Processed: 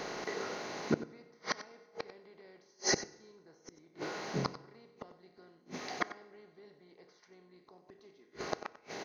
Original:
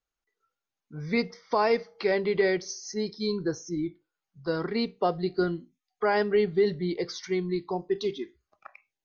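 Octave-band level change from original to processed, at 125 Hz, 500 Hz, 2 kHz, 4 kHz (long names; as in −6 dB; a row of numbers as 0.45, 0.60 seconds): −10.0, −16.0, −8.0, −4.5 decibels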